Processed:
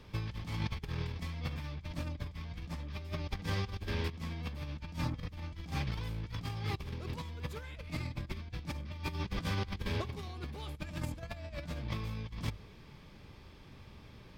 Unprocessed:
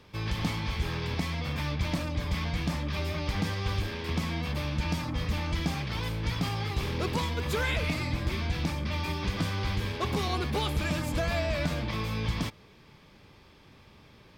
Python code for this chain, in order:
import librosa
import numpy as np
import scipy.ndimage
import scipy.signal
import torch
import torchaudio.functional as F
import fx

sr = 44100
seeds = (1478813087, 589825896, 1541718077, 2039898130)

y = fx.low_shelf(x, sr, hz=140.0, db=10.0)
y = fx.hum_notches(y, sr, base_hz=50, count=3)
y = fx.over_compress(y, sr, threshold_db=-30.0, ratio=-0.5)
y = F.gain(torch.from_numpy(y), -7.5).numpy()